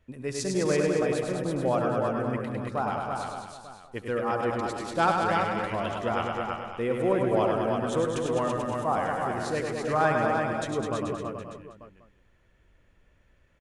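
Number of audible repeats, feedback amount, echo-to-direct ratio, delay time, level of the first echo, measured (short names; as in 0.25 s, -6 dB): 12, no steady repeat, 1.5 dB, 71 ms, -17.0 dB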